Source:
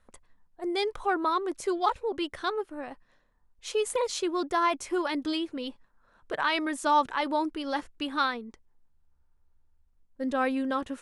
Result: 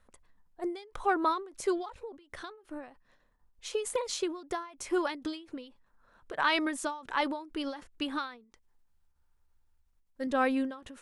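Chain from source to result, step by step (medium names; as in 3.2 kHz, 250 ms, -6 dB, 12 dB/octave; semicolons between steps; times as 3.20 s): 8.44–10.27 s: tilt shelf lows -4 dB, about 930 Hz; endings held to a fixed fall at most 120 dB/s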